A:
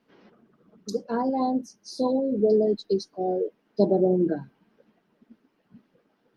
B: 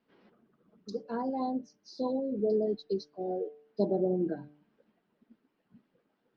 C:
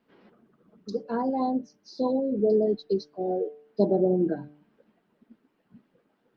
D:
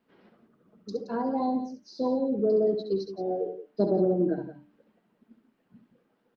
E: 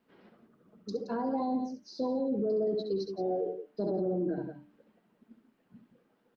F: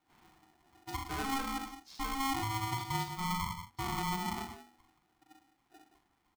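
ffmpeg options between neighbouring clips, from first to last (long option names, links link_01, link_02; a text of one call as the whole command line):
ffmpeg -i in.wav -af "lowpass=frequency=5100:width=0.5412,lowpass=frequency=5100:width=1.3066,bandreject=frequency=148:width_type=h:width=4,bandreject=frequency=296:width_type=h:width=4,bandreject=frequency=444:width_type=h:width=4,bandreject=frequency=592:width_type=h:width=4,bandreject=frequency=740:width_type=h:width=4,volume=-7.5dB" out.wav
ffmpeg -i in.wav -af "highshelf=frequency=4700:gain=-5.5,volume=6dB" out.wav
ffmpeg -i in.wav -af "acontrast=32,aecho=1:1:67.06|172:0.398|0.251,volume=-7.5dB" out.wav
ffmpeg -i in.wav -af "alimiter=limit=-24dB:level=0:latency=1:release=60" out.wav
ffmpeg -i in.wav -filter_complex "[0:a]asplit=2[link_01][link_02];[link_02]adelay=41,volume=-4.5dB[link_03];[link_01][link_03]amix=inputs=2:normalize=0,aeval=exprs='val(0)*sgn(sin(2*PI*540*n/s))':channel_layout=same,volume=-5dB" out.wav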